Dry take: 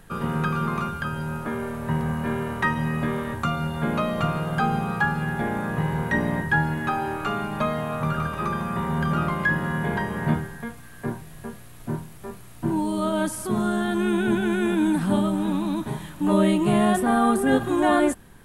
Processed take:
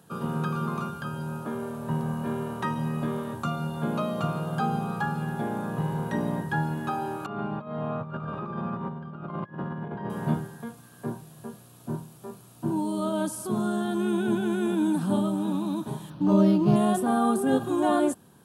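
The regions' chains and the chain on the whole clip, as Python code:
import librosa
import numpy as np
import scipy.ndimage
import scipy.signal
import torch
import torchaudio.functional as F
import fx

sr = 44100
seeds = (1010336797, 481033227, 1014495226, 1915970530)

y = fx.chain(x, sr, fx.over_compress(threshold_db=-28.0, ratio=-0.5),
    fx.air_absorb(metres=380.0), at=(7.26, 10.1))
y = fx.chain(y, sr, fx.peak_eq(hz=97.0, db=10.0, octaves=1.7),
    fx.resample_linear(factor=6), at=(16.1, 16.76))
y = scipy.signal.sosfilt(scipy.signal.butter(4, 110.0, 'highpass', fs=sr, output='sos'), y)
y = fx.peak_eq(y, sr, hz=2000.0, db=-13.5, octaves=0.61)
y = y * librosa.db_to_amplitude(-3.0)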